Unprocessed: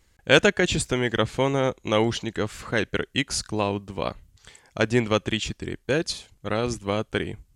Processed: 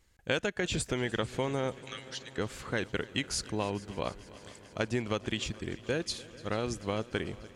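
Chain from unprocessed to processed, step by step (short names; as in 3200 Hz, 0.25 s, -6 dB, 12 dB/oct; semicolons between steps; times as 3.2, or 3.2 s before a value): compressor 6:1, threshold -21 dBFS, peak gain reduction 10.5 dB; 1.8–2.38 rippled Chebyshev high-pass 1200 Hz, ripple 6 dB; on a send: multi-head echo 0.147 s, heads second and third, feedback 74%, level -21 dB; on the sum: gain -5.5 dB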